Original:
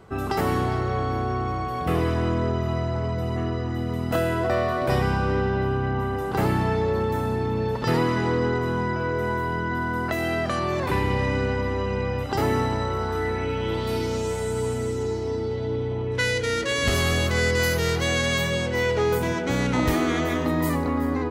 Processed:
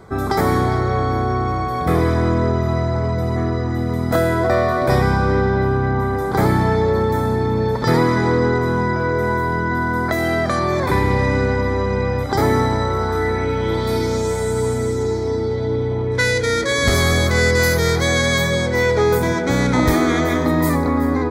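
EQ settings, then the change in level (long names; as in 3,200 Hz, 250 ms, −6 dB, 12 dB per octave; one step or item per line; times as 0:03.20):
Butterworth band-reject 2,800 Hz, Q 3.5
+6.5 dB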